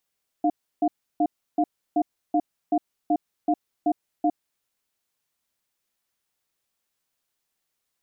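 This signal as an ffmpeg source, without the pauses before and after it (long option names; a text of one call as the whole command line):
ffmpeg -f lavfi -i "aevalsrc='0.0944*(sin(2*PI*304*t)+sin(2*PI*705*t))*clip(min(mod(t,0.38),0.06-mod(t,0.38))/0.005,0,1)':duration=3.97:sample_rate=44100" out.wav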